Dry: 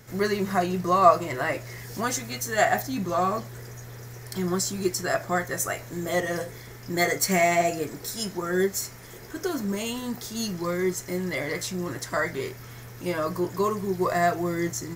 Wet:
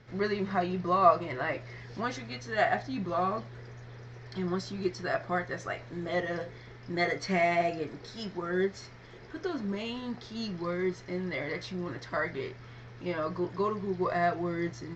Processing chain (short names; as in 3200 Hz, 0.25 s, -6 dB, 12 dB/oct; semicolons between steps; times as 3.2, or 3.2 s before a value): inverse Chebyshev low-pass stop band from 10000 Hz, stop band 50 dB; gain -5 dB